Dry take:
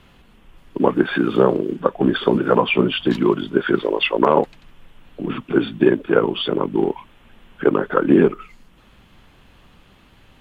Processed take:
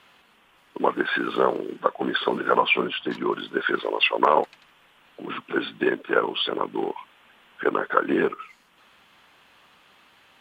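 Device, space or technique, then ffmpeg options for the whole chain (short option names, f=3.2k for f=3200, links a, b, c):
filter by subtraction: -filter_complex "[0:a]asplit=2[a][b];[b]lowpass=1.2k,volume=-1[c];[a][c]amix=inputs=2:normalize=0,asplit=3[d][e][f];[d]afade=t=out:st=2.87:d=0.02[g];[e]highshelf=f=2.1k:g=-9,afade=t=in:st=2.87:d=0.02,afade=t=out:st=3.32:d=0.02[h];[f]afade=t=in:st=3.32:d=0.02[i];[g][h][i]amix=inputs=3:normalize=0,volume=-1.5dB"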